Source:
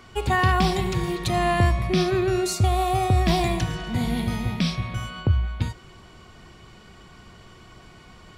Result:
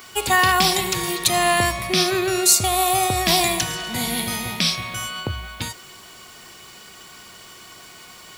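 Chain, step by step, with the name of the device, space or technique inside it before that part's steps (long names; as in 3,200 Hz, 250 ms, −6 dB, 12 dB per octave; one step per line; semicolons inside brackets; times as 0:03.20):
turntable without a phono preamp (RIAA equalisation recording; white noise bed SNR 30 dB)
level +4.5 dB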